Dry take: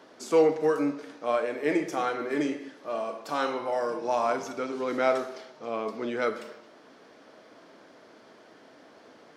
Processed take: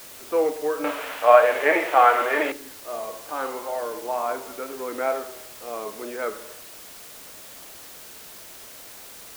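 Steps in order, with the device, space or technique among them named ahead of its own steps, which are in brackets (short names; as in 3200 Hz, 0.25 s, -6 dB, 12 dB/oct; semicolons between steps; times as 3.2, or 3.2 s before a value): wax cylinder (BPF 330–2100 Hz; wow and flutter; white noise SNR 12 dB); 0.84–2.52 band shelf 1300 Hz +15 dB 2.9 oct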